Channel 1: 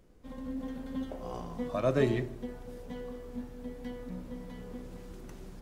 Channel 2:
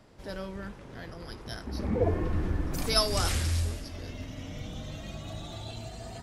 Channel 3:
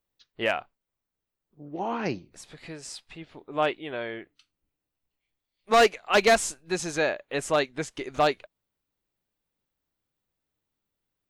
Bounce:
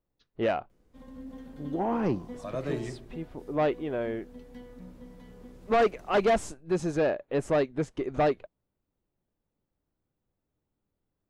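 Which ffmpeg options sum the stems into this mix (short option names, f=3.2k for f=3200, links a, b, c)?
-filter_complex "[0:a]adelay=700,volume=-5.5dB[a];[2:a]tiltshelf=f=1.3k:g=9.5,volume=-3dB[b];[a][b]amix=inputs=2:normalize=0,asoftclip=type=tanh:threshold=-18.5dB"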